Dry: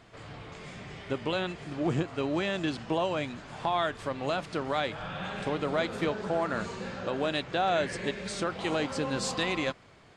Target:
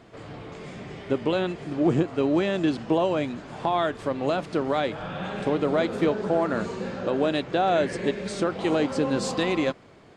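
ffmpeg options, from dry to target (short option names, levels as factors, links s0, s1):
-af "equalizer=f=330:t=o:w=2.4:g=8.5"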